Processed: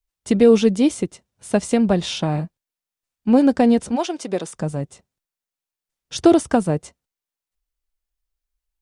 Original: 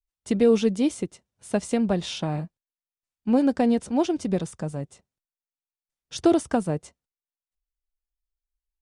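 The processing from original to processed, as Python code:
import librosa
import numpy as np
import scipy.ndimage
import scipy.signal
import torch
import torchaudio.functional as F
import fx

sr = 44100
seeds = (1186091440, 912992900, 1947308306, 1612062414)

y = fx.highpass(x, sr, hz=fx.line((3.95, 700.0), (4.55, 260.0)), slope=12, at=(3.95, 4.55), fade=0.02)
y = y * 10.0 ** (6.0 / 20.0)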